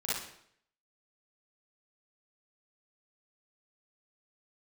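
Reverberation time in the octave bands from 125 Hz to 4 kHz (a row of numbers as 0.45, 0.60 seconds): 0.70, 0.65, 0.70, 0.65, 0.65, 0.60 seconds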